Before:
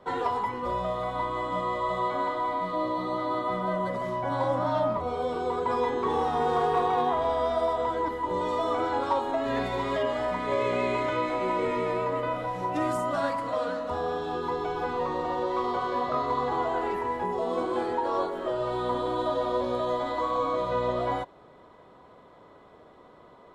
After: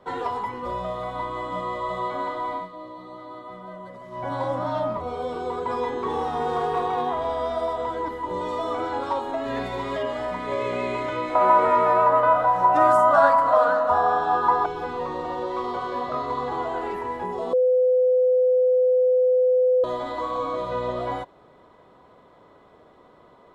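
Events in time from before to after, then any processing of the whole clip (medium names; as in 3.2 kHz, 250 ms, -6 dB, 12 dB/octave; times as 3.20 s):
2.56–4.23 s: dip -10.5 dB, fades 0.13 s
11.35–14.66 s: high-order bell 1 kHz +13.5 dB
17.53–19.84 s: bleep 506 Hz -15.5 dBFS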